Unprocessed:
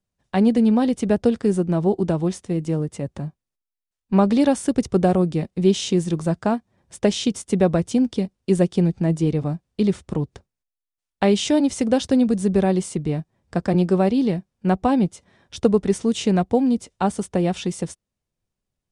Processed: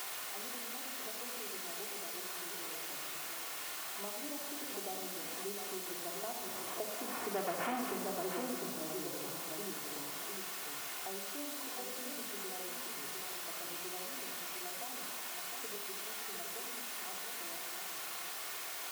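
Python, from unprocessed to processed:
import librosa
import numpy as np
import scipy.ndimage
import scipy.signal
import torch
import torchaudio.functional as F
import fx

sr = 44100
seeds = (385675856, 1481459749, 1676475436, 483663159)

p1 = fx.delta_mod(x, sr, bps=16000, step_db=-21.0)
p2 = fx.doppler_pass(p1, sr, speed_mps=12, closest_m=1.6, pass_at_s=7.68)
p3 = scipy.signal.sosfilt(scipy.signal.butter(2, 1100.0, 'lowpass', fs=sr, output='sos'), p2)
p4 = p3 + fx.echo_single(p3, sr, ms=704, db=-8.0, dry=0)
p5 = fx.dmg_noise_colour(p4, sr, seeds[0], colour='white', level_db=-50.0)
p6 = 10.0 ** (-20.0 / 20.0) * np.tanh(p5 / 10.0 ** (-20.0 / 20.0))
p7 = scipy.signal.sosfilt(scipy.signal.butter(2, 570.0, 'highpass', fs=sr, output='sos'), p6)
p8 = fx.room_shoebox(p7, sr, seeds[1], volume_m3=2300.0, walls='furnished', distance_m=3.3)
p9 = fx.band_squash(p8, sr, depth_pct=70)
y = p9 * librosa.db_to_amplitude(4.0)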